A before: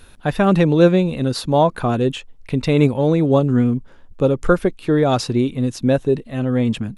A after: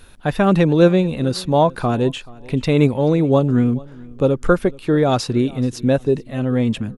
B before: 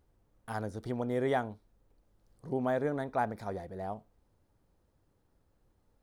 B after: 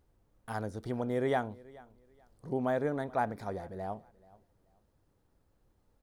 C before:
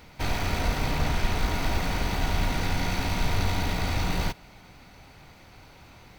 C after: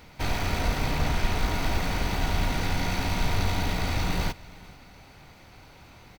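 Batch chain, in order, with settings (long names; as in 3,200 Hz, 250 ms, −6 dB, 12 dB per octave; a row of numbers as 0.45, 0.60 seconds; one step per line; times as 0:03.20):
repeating echo 431 ms, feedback 24%, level −22.5 dB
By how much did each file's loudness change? 0.0, 0.0, 0.0 LU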